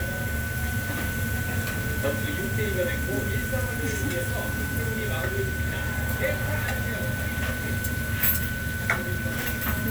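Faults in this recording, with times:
whine 1.5 kHz -32 dBFS

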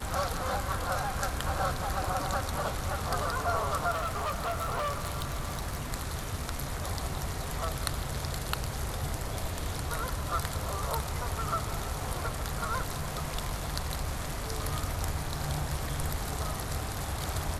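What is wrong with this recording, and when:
3.91–5.86 s: clipped -28 dBFS

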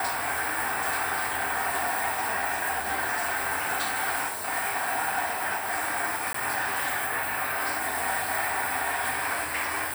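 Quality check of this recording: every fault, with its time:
6.33–6.34 s: dropout 14 ms

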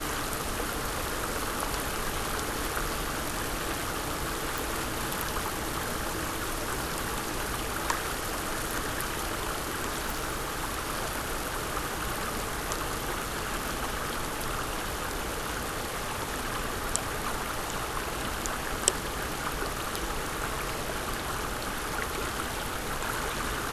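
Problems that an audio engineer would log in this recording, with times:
4.58 s: pop
10.04–10.50 s: clipped -25.5 dBFS

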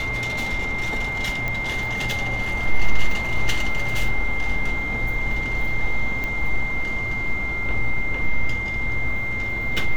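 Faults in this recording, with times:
whine 2.1 kHz -25 dBFS
1.48 s: pop -13 dBFS
6.24 s: pop -14 dBFS

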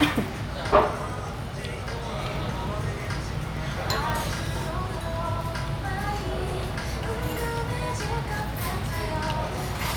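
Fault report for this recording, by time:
crackle 10 per s -31 dBFS
4.10 s: pop

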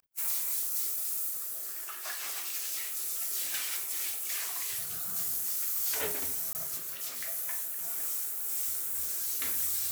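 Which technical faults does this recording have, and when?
6.53–6.55 s: dropout 19 ms

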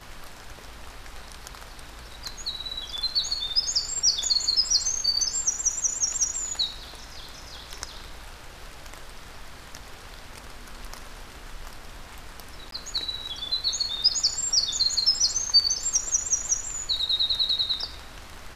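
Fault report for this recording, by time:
12.71–12.72 s: dropout 13 ms

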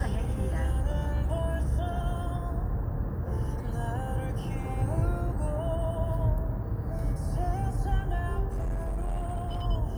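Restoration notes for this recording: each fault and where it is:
8.49–9.63 s: clipped -27 dBFS

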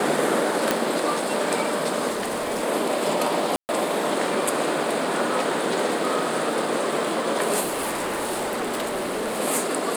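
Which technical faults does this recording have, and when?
0.71 s: pop
2.09–2.63 s: clipped -23 dBFS
3.56–3.69 s: dropout 129 ms
7.62–9.41 s: clipped -23.5 dBFS

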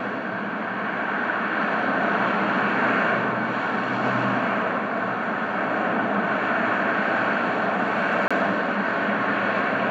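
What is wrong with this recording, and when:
8.28–8.31 s: dropout 26 ms

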